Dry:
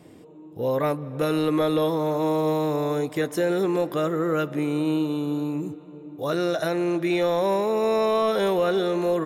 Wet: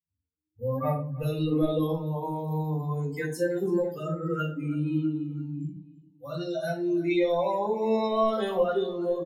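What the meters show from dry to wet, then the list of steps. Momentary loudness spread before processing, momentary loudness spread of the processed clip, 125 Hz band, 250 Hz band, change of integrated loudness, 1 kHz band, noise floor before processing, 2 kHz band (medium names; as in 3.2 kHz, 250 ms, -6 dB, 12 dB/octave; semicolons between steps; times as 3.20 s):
6 LU, 9 LU, +1.0 dB, -4.5 dB, -4.5 dB, -4.5 dB, -46 dBFS, -5.5 dB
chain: expander on every frequency bin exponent 3; on a send: feedback delay 330 ms, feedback 43%, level -19.5 dB; on the sum: simulated room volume 210 m³, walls furnished, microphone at 5.2 m; trim -8 dB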